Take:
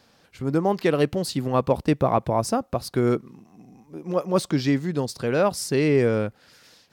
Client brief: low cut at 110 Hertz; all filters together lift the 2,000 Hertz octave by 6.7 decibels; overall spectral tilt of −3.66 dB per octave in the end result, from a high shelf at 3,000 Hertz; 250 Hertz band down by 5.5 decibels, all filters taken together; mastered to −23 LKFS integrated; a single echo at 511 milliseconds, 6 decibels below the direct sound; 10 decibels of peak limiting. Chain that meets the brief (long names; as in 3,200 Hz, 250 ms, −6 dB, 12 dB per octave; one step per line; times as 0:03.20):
high-pass filter 110 Hz
parametric band 250 Hz −7.5 dB
parametric band 2,000 Hz +5.5 dB
high-shelf EQ 3,000 Hz +8 dB
brickwall limiter −16.5 dBFS
single-tap delay 511 ms −6 dB
level +4.5 dB